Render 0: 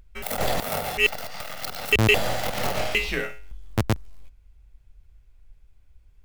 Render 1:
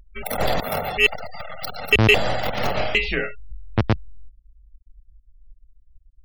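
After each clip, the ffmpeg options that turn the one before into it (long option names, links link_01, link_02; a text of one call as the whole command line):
ffmpeg -i in.wav -af "afftfilt=real='re*gte(hypot(re,im),0.0251)':imag='im*gte(hypot(re,im),0.0251)':win_size=1024:overlap=0.75,volume=3.5dB" out.wav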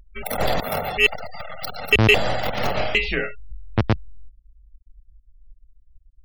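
ffmpeg -i in.wav -af anull out.wav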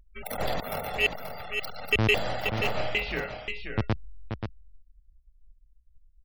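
ffmpeg -i in.wav -af "aecho=1:1:531:0.447,volume=-8dB" out.wav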